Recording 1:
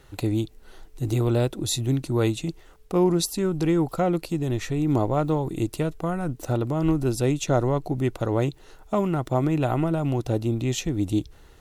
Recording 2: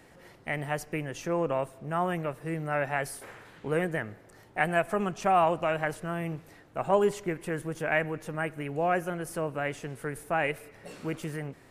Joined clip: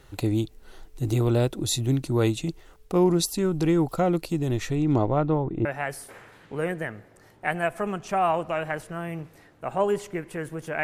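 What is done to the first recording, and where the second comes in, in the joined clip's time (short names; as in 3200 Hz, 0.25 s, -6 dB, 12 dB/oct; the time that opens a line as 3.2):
recording 1
4.75–5.65 LPF 7500 Hz -> 1200 Hz
5.65 switch to recording 2 from 2.78 s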